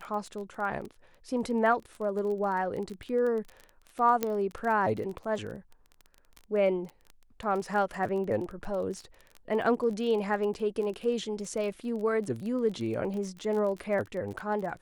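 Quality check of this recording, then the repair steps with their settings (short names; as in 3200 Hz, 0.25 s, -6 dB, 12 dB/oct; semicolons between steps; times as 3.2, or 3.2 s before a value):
crackle 22/s -35 dBFS
4.23 pop -13 dBFS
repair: de-click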